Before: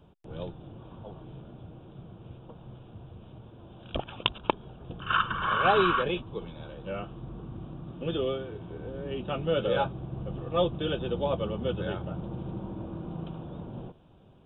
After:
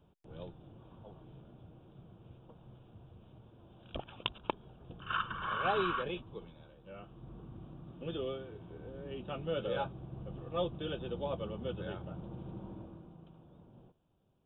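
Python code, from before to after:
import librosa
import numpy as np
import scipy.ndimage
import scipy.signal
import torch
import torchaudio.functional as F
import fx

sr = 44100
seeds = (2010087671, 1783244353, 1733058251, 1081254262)

y = fx.gain(x, sr, db=fx.line((6.34, -9.0), (6.8, -16.5), (7.31, -8.5), (12.75, -8.5), (13.18, -18.0)))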